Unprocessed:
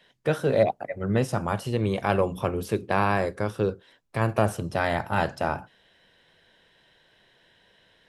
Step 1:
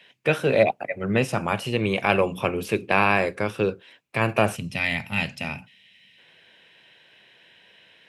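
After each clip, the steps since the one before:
gain on a spectral selection 0:04.56–0:06.18, 270–1,800 Hz −13 dB
high-pass filter 120 Hz 12 dB per octave
parametric band 2,500 Hz +13 dB 0.56 octaves
level +2 dB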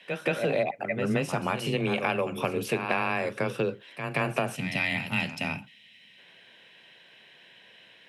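backwards echo 176 ms −11.5 dB
downward compressor 6 to 1, threshold −23 dBFS, peak gain reduction 10.5 dB
frequency shifter +16 Hz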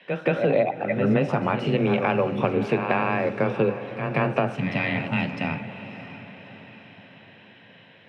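head-to-tape spacing loss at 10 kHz 29 dB
feedback delay with all-pass diffusion 627 ms, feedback 50%, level −13 dB
on a send at −15 dB: convolution reverb RT60 1.2 s, pre-delay 3 ms
on the sum: level +7 dB

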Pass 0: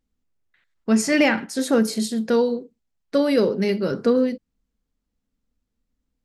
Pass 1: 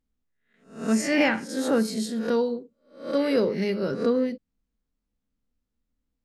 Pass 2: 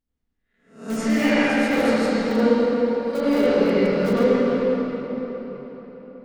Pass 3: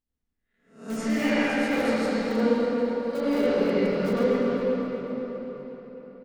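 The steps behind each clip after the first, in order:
peak hold with a rise ahead of every peak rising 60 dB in 0.44 s; high-shelf EQ 5,300 Hz −4.5 dB; level −5 dB
in parallel at −9.5 dB: wrap-around overflow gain 16.5 dB; on the sum: convolution reverb RT60 4.6 s, pre-delay 70 ms, DRR −11.5 dB; level −8 dB
repeating echo 252 ms, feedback 58%, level −14 dB; level −5 dB

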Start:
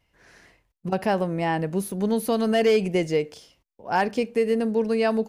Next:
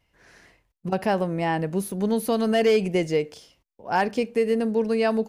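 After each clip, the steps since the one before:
no processing that can be heard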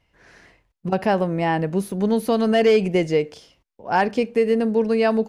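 high-shelf EQ 8,000 Hz −10.5 dB
level +3.5 dB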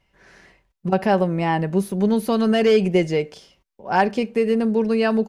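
comb filter 5.2 ms, depth 34%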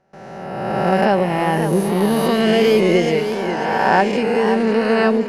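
peak hold with a rise ahead of every peak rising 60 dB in 1.87 s
noise gate with hold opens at −31 dBFS
feedback echo with a swinging delay time 540 ms, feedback 50%, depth 112 cents, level −8.5 dB

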